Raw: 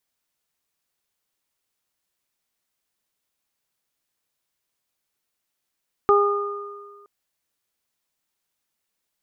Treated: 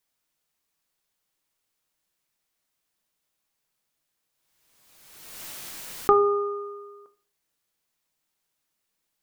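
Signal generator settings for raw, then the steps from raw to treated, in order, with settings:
additive tone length 0.97 s, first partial 407 Hz, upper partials -7.5/-1 dB, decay 1.59 s, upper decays 0.92/1.66 s, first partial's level -14 dB
shoebox room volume 290 m³, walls furnished, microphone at 0.6 m; backwards sustainer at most 36 dB/s

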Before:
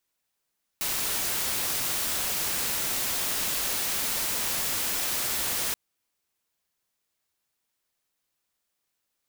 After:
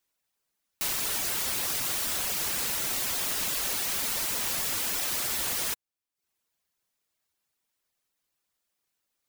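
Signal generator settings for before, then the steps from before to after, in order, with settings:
noise white, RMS -28.5 dBFS 4.93 s
reverb removal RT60 0.52 s

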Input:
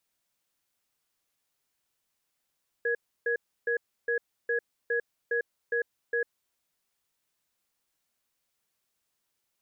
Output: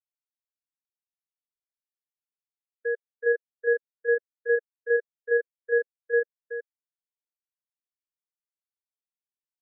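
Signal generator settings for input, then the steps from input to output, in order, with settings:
cadence 471 Hz, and 1670 Hz, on 0.10 s, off 0.31 s, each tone -27.5 dBFS 3.66 s
dynamic EQ 530 Hz, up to +6 dB, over -42 dBFS, Q 0.76; on a send: echo 0.376 s -4 dB; on the sum: spectral expander 1.5:1

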